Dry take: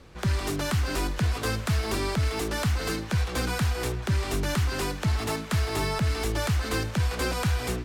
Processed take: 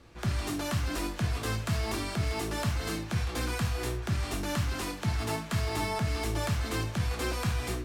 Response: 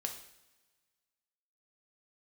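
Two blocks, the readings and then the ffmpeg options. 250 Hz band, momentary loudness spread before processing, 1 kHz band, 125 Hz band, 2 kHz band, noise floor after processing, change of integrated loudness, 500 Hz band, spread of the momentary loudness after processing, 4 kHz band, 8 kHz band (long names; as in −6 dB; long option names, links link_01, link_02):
−3.0 dB, 2 LU, −3.0 dB, −4.0 dB, −4.5 dB, −40 dBFS, −4.0 dB, −5.0 dB, 2 LU, −4.0 dB, −3.5 dB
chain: -filter_complex "[1:a]atrim=start_sample=2205,atrim=end_sample=6174,asetrate=66150,aresample=44100[link_01];[0:a][link_01]afir=irnorm=-1:irlink=0"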